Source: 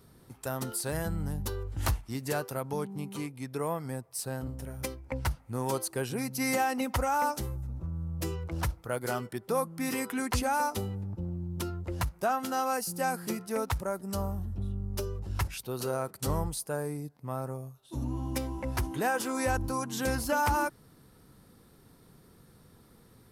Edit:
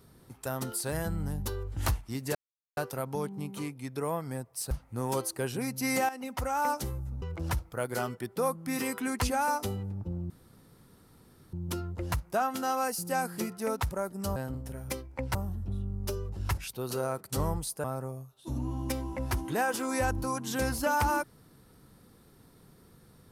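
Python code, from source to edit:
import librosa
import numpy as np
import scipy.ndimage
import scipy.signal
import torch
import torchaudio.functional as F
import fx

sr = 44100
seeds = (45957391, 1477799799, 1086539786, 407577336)

y = fx.edit(x, sr, fx.insert_silence(at_s=2.35, length_s=0.42),
    fx.move(start_s=4.29, length_s=0.99, to_s=14.25),
    fx.fade_in_from(start_s=6.66, length_s=0.62, floor_db=-12.5),
    fx.cut(start_s=7.79, length_s=0.55),
    fx.insert_room_tone(at_s=11.42, length_s=1.23),
    fx.cut(start_s=16.74, length_s=0.56), tone=tone)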